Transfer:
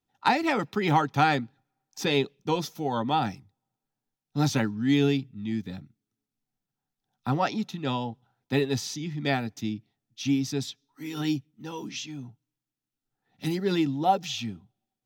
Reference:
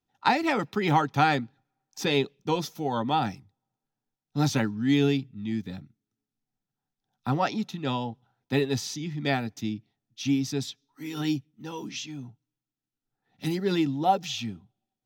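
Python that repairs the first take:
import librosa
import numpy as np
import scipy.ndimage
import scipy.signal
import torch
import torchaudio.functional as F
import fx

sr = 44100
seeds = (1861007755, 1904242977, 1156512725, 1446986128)

y = fx.fix_declip(x, sr, threshold_db=-10.5)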